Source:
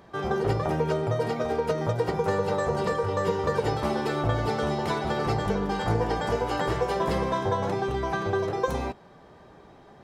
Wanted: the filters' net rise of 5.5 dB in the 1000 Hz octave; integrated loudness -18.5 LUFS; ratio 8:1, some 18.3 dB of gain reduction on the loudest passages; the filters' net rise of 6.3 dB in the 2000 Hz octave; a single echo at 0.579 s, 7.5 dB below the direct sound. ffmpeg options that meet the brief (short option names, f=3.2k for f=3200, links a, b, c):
-af "equalizer=f=1k:t=o:g=5.5,equalizer=f=2k:t=o:g=6,acompressor=threshold=-38dB:ratio=8,aecho=1:1:579:0.422,volume=22dB"